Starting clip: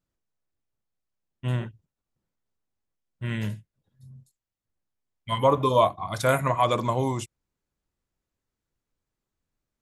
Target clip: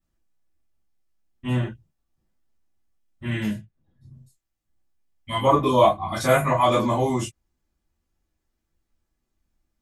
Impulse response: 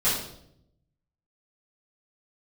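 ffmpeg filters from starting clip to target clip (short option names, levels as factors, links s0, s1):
-filter_complex "[0:a]asettb=1/sr,asplit=3[s0][s1][s2];[s0]atrim=end=3.564[s3];[s1]atrim=start=3.56:end=4.11,asetpts=PTS-STARTPTS,afade=t=in:d=0.004:c=qsin,afade=t=out:st=0.546:d=0.004:c=qsin,aemphasis=mode=reproduction:type=75kf[s4];[s2]atrim=start=4.106[s5];[s3][s4]acrossfade=d=0.004:c1=hsin:c2=qsin[s6];[s6][s5]acrossfade=d=0.004:c1=qsin:c2=hsin[s7];[1:a]atrim=start_sample=2205,afade=t=out:st=0.14:d=0.01,atrim=end_sample=6615,asetrate=70560,aresample=44100[s8];[s7][s8]afir=irnorm=-1:irlink=0,volume=0.631"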